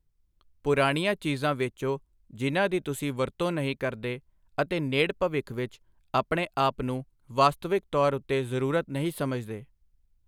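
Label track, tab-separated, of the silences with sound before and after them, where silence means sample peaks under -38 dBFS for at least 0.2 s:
1.970000	2.340000	silence
4.180000	4.580000	silence
5.740000	6.140000	silence
7.020000	7.300000	silence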